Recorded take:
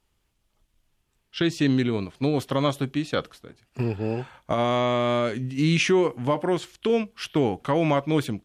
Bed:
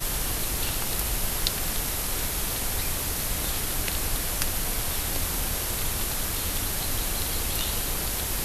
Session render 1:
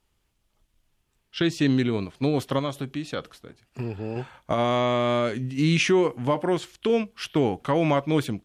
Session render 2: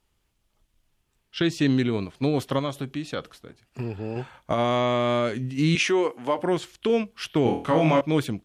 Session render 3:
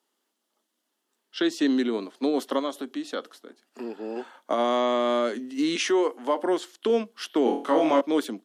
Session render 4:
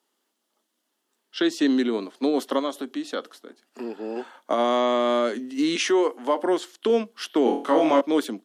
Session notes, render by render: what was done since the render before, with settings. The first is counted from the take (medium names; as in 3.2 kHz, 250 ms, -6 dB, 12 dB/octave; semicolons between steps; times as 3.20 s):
2.59–4.16 s: compression 1.5:1, threshold -34 dBFS
5.75–6.39 s: high-pass 330 Hz; 7.43–8.01 s: flutter echo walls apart 4.3 m, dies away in 0.36 s
steep high-pass 230 Hz 48 dB/octave; peaking EQ 2.4 kHz -9 dB 0.34 oct
trim +2 dB